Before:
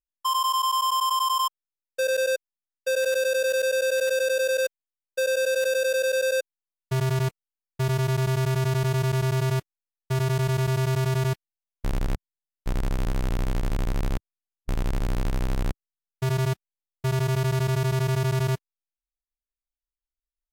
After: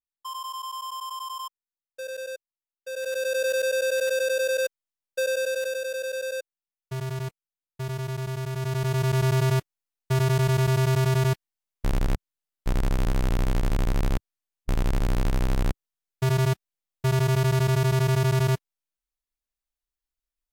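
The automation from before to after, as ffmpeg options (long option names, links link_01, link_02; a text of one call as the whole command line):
ffmpeg -i in.wav -af "volume=8dB,afade=type=in:start_time=2.88:duration=0.56:silence=0.316228,afade=type=out:start_time=5.21:duration=0.62:silence=0.501187,afade=type=in:start_time=8.52:duration=0.74:silence=0.354813" out.wav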